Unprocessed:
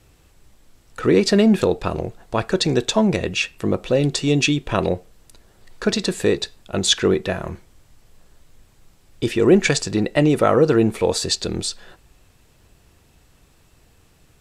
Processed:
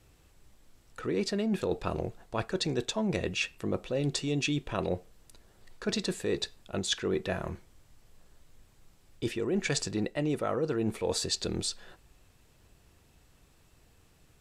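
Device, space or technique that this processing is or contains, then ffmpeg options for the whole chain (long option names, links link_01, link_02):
compression on the reversed sound: -af "areverse,acompressor=threshold=-19dB:ratio=12,areverse,volume=-7dB"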